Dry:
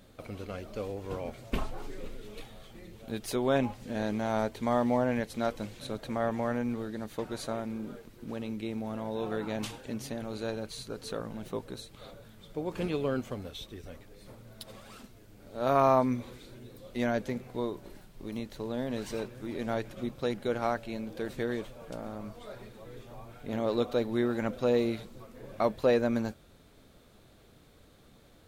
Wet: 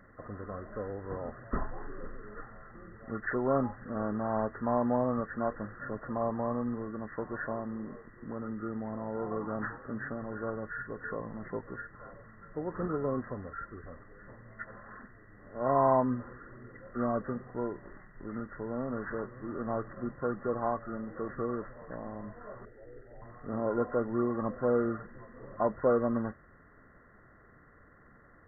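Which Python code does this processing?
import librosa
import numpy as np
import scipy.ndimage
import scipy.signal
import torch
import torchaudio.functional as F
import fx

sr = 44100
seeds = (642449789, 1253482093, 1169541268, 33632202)

y = fx.freq_compress(x, sr, knee_hz=1000.0, ratio=4.0)
y = fx.fixed_phaser(y, sr, hz=440.0, stages=4, at=(22.65, 23.22))
y = y * 10.0 ** (-1.5 / 20.0)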